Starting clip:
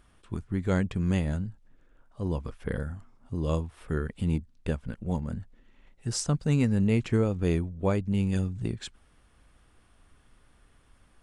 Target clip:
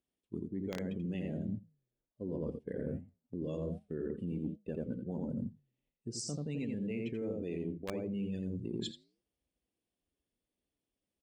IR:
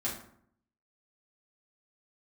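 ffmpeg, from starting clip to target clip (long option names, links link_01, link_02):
-filter_complex "[0:a]aecho=1:1:85|170|255:0.631|0.126|0.0252,afftdn=noise_reduction=22:noise_floor=-38,flanger=delay=6.9:depth=5.3:regen=-89:speed=1.3:shape=triangular,highpass=230,agate=range=-8dB:threshold=-49dB:ratio=16:detection=peak,acrossover=split=680|2400[link_01][link_02][link_03];[link_01]alimiter=level_in=8dB:limit=-24dB:level=0:latency=1:release=80,volume=-8dB[link_04];[link_02]acrusher=bits=4:mix=0:aa=0.000001[link_05];[link_04][link_05][link_03]amix=inputs=3:normalize=0,bandreject=frequency=1400:width=16,areverse,acompressor=threshold=-48dB:ratio=12,areverse,highshelf=frequency=3500:gain=-5.5,volume=14dB"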